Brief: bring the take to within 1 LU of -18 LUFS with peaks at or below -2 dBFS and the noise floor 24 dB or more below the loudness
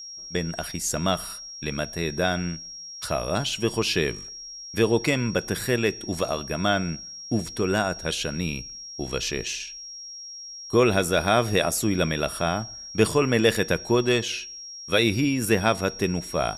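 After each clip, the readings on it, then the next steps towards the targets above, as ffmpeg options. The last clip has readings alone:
steady tone 5600 Hz; tone level -37 dBFS; loudness -25.0 LUFS; peak -5.0 dBFS; loudness target -18.0 LUFS
-> -af "bandreject=f=5.6k:w=30"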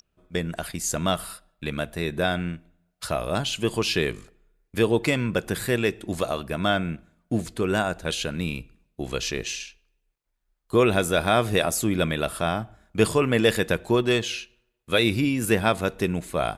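steady tone none; loudness -25.0 LUFS; peak -5.0 dBFS; loudness target -18.0 LUFS
-> -af "volume=7dB,alimiter=limit=-2dB:level=0:latency=1"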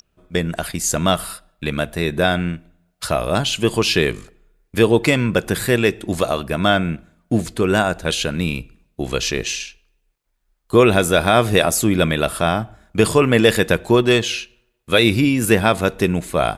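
loudness -18.5 LUFS; peak -2.0 dBFS; noise floor -68 dBFS

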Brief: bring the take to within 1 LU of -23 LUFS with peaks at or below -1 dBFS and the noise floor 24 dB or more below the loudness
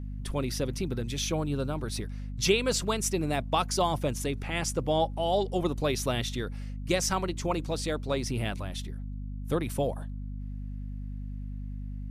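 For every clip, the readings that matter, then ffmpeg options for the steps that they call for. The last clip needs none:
hum 50 Hz; harmonics up to 250 Hz; hum level -34 dBFS; loudness -31.0 LUFS; peak -10.5 dBFS; loudness target -23.0 LUFS
-> -af "bandreject=f=50:t=h:w=4,bandreject=f=100:t=h:w=4,bandreject=f=150:t=h:w=4,bandreject=f=200:t=h:w=4,bandreject=f=250:t=h:w=4"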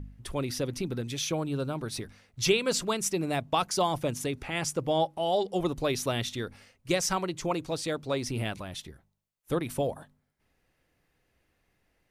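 hum none; loudness -30.5 LUFS; peak -11.0 dBFS; loudness target -23.0 LUFS
-> -af "volume=7.5dB"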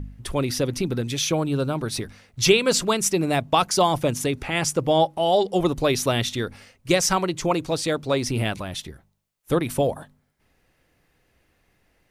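loudness -23.0 LUFS; peak -3.5 dBFS; noise floor -67 dBFS

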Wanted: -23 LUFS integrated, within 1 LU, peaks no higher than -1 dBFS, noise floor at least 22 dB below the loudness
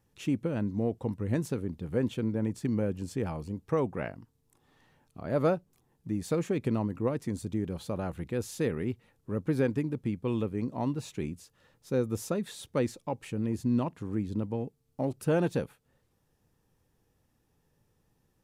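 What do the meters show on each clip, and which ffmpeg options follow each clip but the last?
loudness -32.0 LUFS; peak -16.5 dBFS; loudness target -23.0 LUFS
-> -af "volume=9dB"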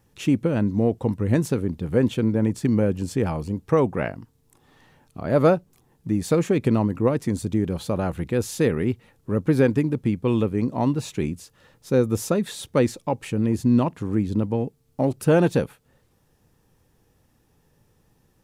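loudness -23.0 LUFS; peak -7.5 dBFS; noise floor -64 dBFS

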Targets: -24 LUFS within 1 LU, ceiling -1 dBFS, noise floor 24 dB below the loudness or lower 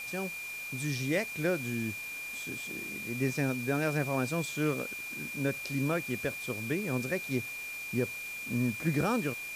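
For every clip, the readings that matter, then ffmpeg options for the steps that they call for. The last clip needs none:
steady tone 2400 Hz; tone level -38 dBFS; noise floor -40 dBFS; noise floor target -57 dBFS; loudness -33.0 LUFS; peak -17.5 dBFS; loudness target -24.0 LUFS
-> -af "bandreject=f=2.4k:w=30"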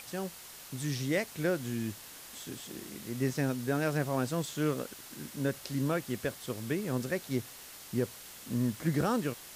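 steady tone none; noise floor -49 dBFS; noise floor target -58 dBFS
-> -af "afftdn=nr=9:nf=-49"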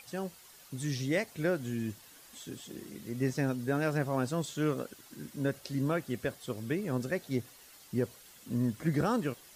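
noise floor -56 dBFS; noise floor target -58 dBFS
-> -af "afftdn=nr=6:nf=-56"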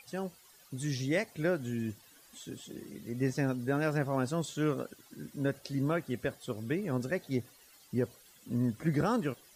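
noise floor -60 dBFS; loudness -34.0 LUFS; peak -18.5 dBFS; loudness target -24.0 LUFS
-> -af "volume=10dB"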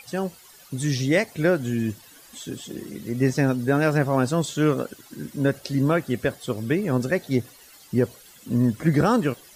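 loudness -24.0 LUFS; peak -8.5 dBFS; noise floor -50 dBFS

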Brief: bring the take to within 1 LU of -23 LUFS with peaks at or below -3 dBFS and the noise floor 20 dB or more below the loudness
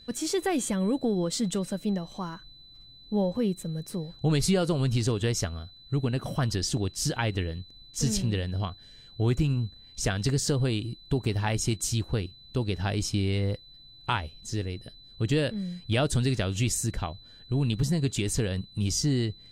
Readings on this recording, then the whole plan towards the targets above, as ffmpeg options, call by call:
steady tone 4000 Hz; tone level -50 dBFS; loudness -29.0 LUFS; peak -13.5 dBFS; loudness target -23.0 LUFS
-> -af "bandreject=f=4k:w=30"
-af "volume=6dB"

